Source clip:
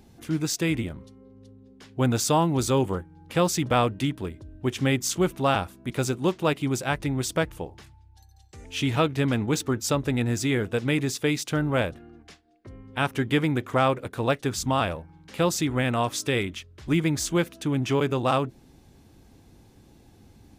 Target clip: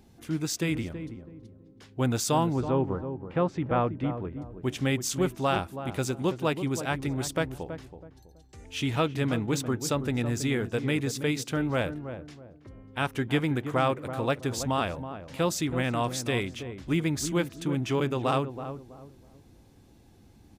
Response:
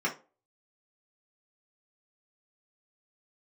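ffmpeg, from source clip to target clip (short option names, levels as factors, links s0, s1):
-filter_complex "[0:a]asettb=1/sr,asplit=3[s0][s1][s2];[s0]atrim=end=2.534[s3];[s1]atrim=start=2.53:end=4.42,asetpts=PTS-STARTPTS,afade=t=in:d=0.004:c=qsin,afade=t=out:st=1.886:d=0.004:c=qsin,lowpass=1600[s4];[s2]atrim=start=4.416[s5];[s3][s4]acrossfade=d=0.004:c1=hsin:c2=qsin[s6];[s6][s5]acrossfade=d=0.004:c1=qsin:c2=hsin,asplit=2[s7][s8];[s8]adelay=326,lowpass=f=820:p=1,volume=0.376,asplit=2[s9][s10];[s10]adelay=326,lowpass=f=820:p=1,volume=0.33,asplit=2[s11][s12];[s12]adelay=326,lowpass=f=820:p=1,volume=0.33,asplit=2[s13][s14];[s14]adelay=326,lowpass=f=820:p=1,volume=0.33[s15];[s7][s9][s11][s13][s15]amix=inputs=5:normalize=0,volume=0.668"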